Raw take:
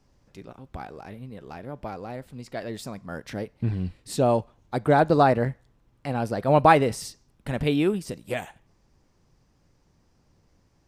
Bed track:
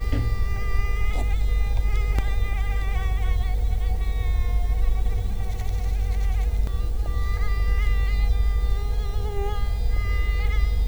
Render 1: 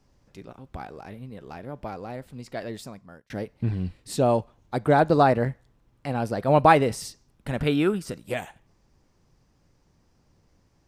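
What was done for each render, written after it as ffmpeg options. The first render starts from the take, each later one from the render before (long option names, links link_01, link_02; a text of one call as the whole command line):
ffmpeg -i in.wav -filter_complex "[0:a]asettb=1/sr,asplit=3[link_01][link_02][link_03];[link_01]atrim=end=7.594[link_04];[link_02]atrim=start=7.59:end=8.21,asetpts=PTS-STARTPTS,afade=type=in:duration=0.004:curve=qsin,afade=type=out:start_time=0.616:duration=0.004:curve=qsin,equalizer=frequency=1400:width_type=o:width=0.39:gain=11[link_05];[link_03]atrim=start=8.206[link_06];[link_04][link_05]acrossfade=duration=0.004:curve1=hsin:curve2=qsin[link_07];[link_07][link_06]acrossfade=duration=0.004:curve1=qsin:curve2=hsin,asplit=2[link_08][link_09];[link_08]atrim=end=3.3,asetpts=PTS-STARTPTS,afade=type=out:start_time=2.65:duration=0.65[link_10];[link_09]atrim=start=3.3,asetpts=PTS-STARTPTS,afade=type=in:duration=0.004:curve=hsin[link_11];[link_10][link_11]concat=n=2:v=0:a=1" out.wav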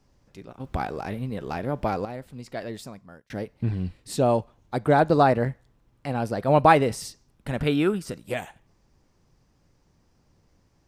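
ffmpeg -i in.wav -filter_complex "[0:a]asplit=3[link_01][link_02][link_03];[link_01]atrim=end=0.602[link_04];[link_02]atrim=start=0.598:end=2.052,asetpts=PTS-STARTPTS,volume=9dB[link_05];[link_03]atrim=start=2.048[link_06];[link_04][link_05]acrossfade=duration=0.004:curve1=hsin:curve2=hsin[link_07];[link_07][link_06]acrossfade=duration=0.004:curve1=hsin:curve2=hsin" out.wav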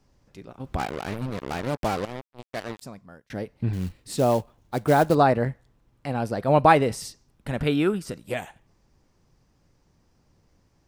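ffmpeg -i in.wav -filter_complex "[0:a]asplit=3[link_01][link_02][link_03];[link_01]afade=type=out:start_time=0.78:duration=0.02[link_04];[link_02]acrusher=bits=4:mix=0:aa=0.5,afade=type=in:start_time=0.78:duration=0.02,afade=type=out:start_time=2.81:duration=0.02[link_05];[link_03]afade=type=in:start_time=2.81:duration=0.02[link_06];[link_04][link_05][link_06]amix=inputs=3:normalize=0,asettb=1/sr,asplit=3[link_07][link_08][link_09];[link_07]atrim=end=3.734[link_10];[link_08]atrim=start=3.73:end=5.15,asetpts=PTS-STARTPTS,afade=type=in:duration=0.004:curve=qsin,afade=type=out:start_time=1.416:duration=0.004:curve=qsin,acrusher=bits=5:mode=log:mix=0:aa=0.000001[link_11];[link_09]atrim=start=5.146[link_12];[link_10][link_11]acrossfade=duration=0.004:curve1=hsin:curve2=qsin[link_13];[link_13][link_12]acrossfade=duration=0.004:curve1=qsin:curve2=hsin" out.wav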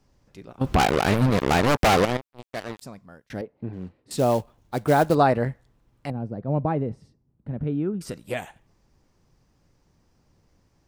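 ffmpeg -i in.wav -filter_complex "[0:a]asettb=1/sr,asplit=3[link_01][link_02][link_03];[link_01]atrim=end=0.614[link_04];[link_02]atrim=start=0.61:end=2.17,asetpts=PTS-STARTPTS,afade=type=in:duration=0.004:curve=qsin,afade=type=out:start_time=1.556:duration=0.004:curve=qsin,aeval=exprs='0.211*sin(PI/2*3.16*val(0)/0.211)':channel_layout=same[link_05];[link_03]atrim=start=2.166[link_06];[link_04][link_05]acrossfade=duration=0.004:curve1=hsin:curve2=qsin[link_07];[link_07][link_06]acrossfade=duration=0.004:curve1=qsin:curve2=hsin,asettb=1/sr,asplit=3[link_08][link_09][link_10];[link_08]atrim=end=3.414[link_11];[link_09]atrim=start=3.41:end=4.11,asetpts=PTS-STARTPTS,afade=type=in:duration=0.004:curve=qsin,afade=type=out:start_time=0.696:duration=0.004:curve=qsin,bandpass=frequency=460:width_type=q:width=0.77[link_12];[link_10]atrim=start=4.106[link_13];[link_11][link_12]acrossfade=duration=0.004:curve1=hsin:curve2=qsin[link_14];[link_14][link_13]acrossfade=duration=0.004:curve1=qsin:curve2=hsin,asettb=1/sr,asplit=3[link_15][link_16][link_17];[link_15]atrim=end=6.104[link_18];[link_16]atrim=start=6.1:end=8.01,asetpts=PTS-STARTPTS,afade=type=in:duration=0.004:curve=qsin,afade=type=out:start_time=1.906:duration=0.004:curve=qsin,bandpass=frequency=150:width_type=q:width=0.76[link_19];[link_17]atrim=start=8.006[link_20];[link_18][link_19]acrossfade=duration=0.004:curve1=hsin:curve2=qsin[link_21];[link_21][link_20]acrossfade=duration=0.004:curve1=qsin:curve2=hsin" out.wav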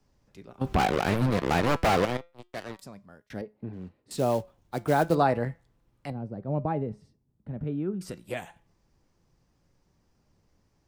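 ffmpeg -i in.wav -filter_complex "[0:a]acrossover=split=230|1600|2300[link_01][link_02][link_03][link_04];[link_04]volume=29.5dB,asoftclip=hard,volume=-29.5dB[link_05];[link_01][link_02][link_03][link_05]amix=inputs=4:normalize=0,flanger=delay=4.7:depth=1.3:regen=88:speed=0.28:shape=sinusoidal" out.wav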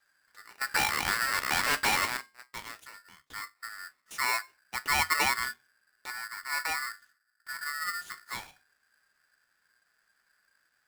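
ffmpeg -i in.wav -af "flanger=delay=7.8:depth=7.8:regen=-54:speed=0.19:shape=sinusoidal,aeval=exprs='val(0)*sgn(sin(2*PI*1600*n/s))':channel_layout=same" out.wav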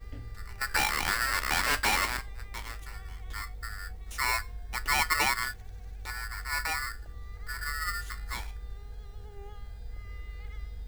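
ffmpeg -i in.wav -i bed.wav -filter_complex "[1:a]volume=-18.5dB[link_01];[0:a][link_01]amix=inputs=2:normalize=0" out.wav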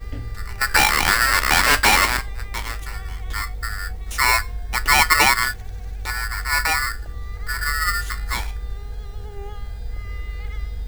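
ffmpeg -i in.wav -af "volume=11.5dB" out.wav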